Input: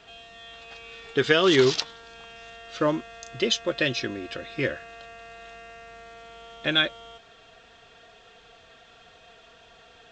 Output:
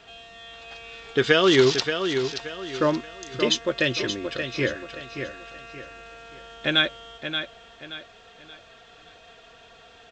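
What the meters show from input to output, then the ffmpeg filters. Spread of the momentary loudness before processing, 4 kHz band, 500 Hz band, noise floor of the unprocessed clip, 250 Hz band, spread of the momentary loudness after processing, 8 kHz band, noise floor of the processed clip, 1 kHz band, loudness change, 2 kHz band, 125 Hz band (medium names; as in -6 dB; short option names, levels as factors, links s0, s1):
24 LU, +2.0 dB, +2.0 dB, -54 dBFS, +2.0 dB, 23 LU, no reading, -51 dBFS, +2.0 dB, +0.5 dB, +2.0 dB, +2.5 dB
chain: -af "aecho=1:1:577|1154|1731|2308:0.398|0.135|0.046|0.0156,volume=1.19"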